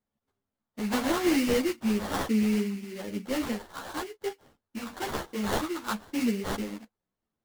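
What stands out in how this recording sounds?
phaser sweep stages 6, 0.99 Hz, lowest notch 620–1,900 Hz
aliases and images of a low sample rate 2,500 Hz, jitter 20%
a shimmering, thickened sound

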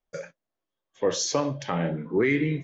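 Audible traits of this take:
background noise floor −86 dBFS
spectral slope −4.5 dB per octave

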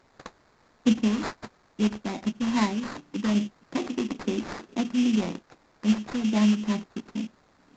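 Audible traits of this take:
a quantiser's noise floor 10 bits, dither triangular
phaser sweep stages 2, 2.4 Hz, lowest notch 720–1,900 Hz
aliases and images of a low sample rate 3,000 Hz, jitter 20%
mu-law

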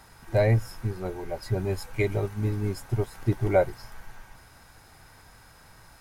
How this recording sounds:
background noise floor −54 dBFS
spectral slope −6.0 dB per octave

